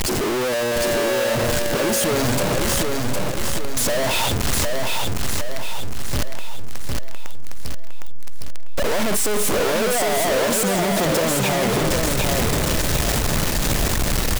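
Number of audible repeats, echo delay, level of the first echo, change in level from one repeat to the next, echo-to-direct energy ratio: 5, 759 ms, −3.5 dB, −6.5 dB, −2.5 dB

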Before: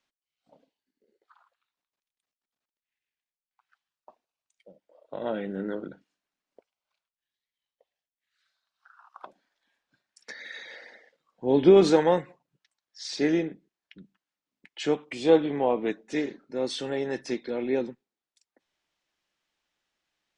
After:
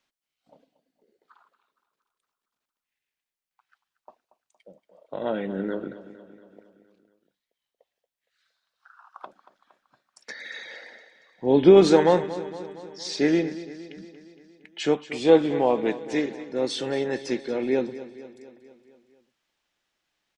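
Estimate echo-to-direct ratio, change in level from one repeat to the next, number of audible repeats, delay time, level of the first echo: −13.0 dB, −4.5 dB, 5, 232 ms, −15.0 dB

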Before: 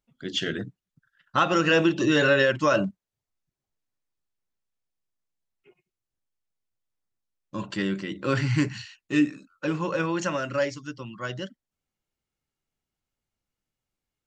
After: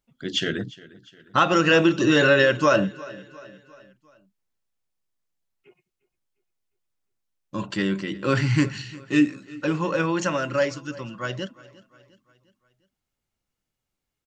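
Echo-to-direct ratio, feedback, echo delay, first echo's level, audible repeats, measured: −19.5 dB, 50%, 353 ms, −20.5 dB, 3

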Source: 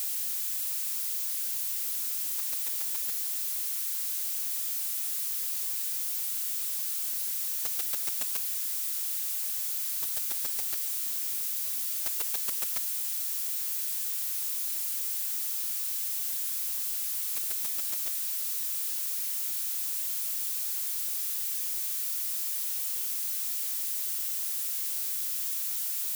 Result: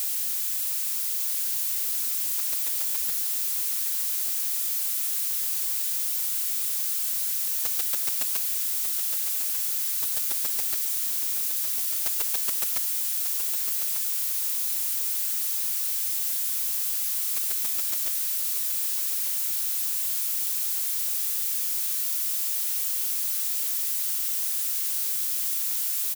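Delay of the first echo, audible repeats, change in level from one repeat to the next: 1,194 ms, 2, −10.5 dB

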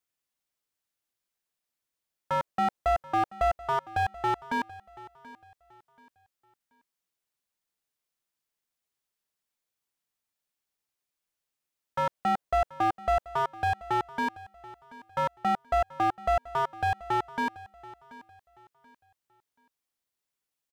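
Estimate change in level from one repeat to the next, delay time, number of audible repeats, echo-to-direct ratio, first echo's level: −10.5 dB, 732 ms, 2, −18.5 dB, −19.0 dB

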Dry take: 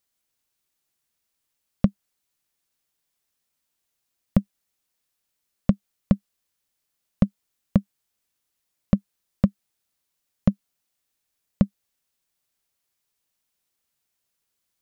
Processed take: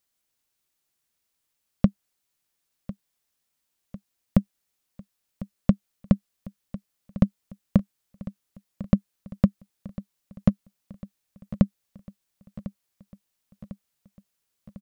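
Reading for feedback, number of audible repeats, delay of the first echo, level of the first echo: 59%, 5, 1,050 ms, −16.5 dB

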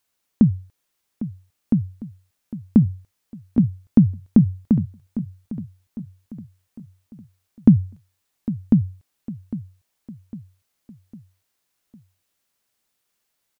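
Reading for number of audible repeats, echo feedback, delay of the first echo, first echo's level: 4, 47%, 804 ms, −14.0 dB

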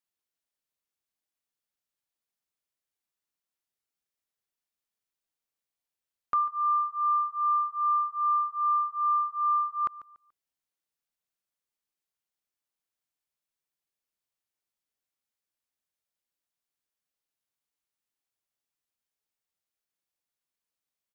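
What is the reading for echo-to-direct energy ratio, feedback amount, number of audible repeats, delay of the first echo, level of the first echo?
−17.0 dB, 29%, 2, 144 ms, −17.5 dB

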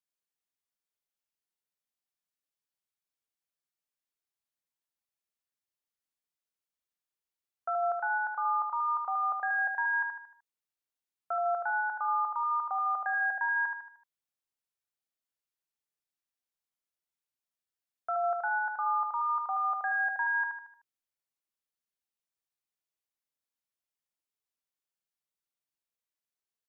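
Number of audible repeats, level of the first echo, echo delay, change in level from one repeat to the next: 5, −5.0 dB, 76 ms, −7.0 dB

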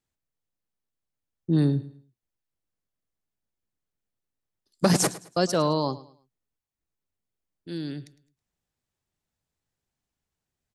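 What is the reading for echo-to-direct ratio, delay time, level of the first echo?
−17.0 dB, 107 ms, −17.5 dB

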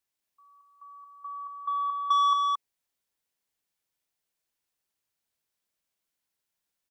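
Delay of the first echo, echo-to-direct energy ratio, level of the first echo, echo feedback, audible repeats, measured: 222 ms, −3.5 dB, −3.5 dB, repeats not evenly spaced, 1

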